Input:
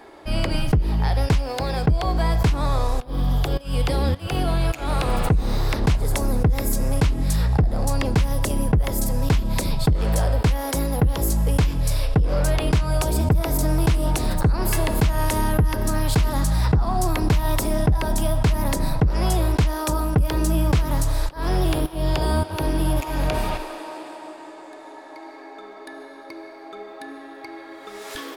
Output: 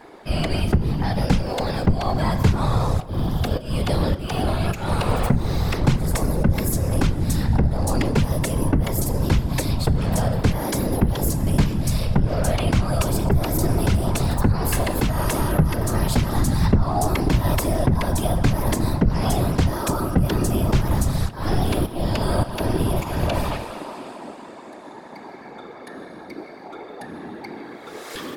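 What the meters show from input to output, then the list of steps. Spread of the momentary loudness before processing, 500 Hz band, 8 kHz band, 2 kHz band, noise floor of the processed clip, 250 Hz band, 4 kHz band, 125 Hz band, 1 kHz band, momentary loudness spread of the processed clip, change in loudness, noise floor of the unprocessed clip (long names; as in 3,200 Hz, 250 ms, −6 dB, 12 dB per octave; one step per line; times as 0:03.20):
17 LU, +1.0 dB, 0.0 dB, 0.0 dB, −40 dBFS, +3.0 dB, 0.0 dB, +1.0 dB, +0.5 dB, 16 LU, +0.5 dB, −41 dBFS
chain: feedback delay network reverb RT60 0.97 s, high-frequency decay 0.45×, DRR 12 dB
random phases in short frames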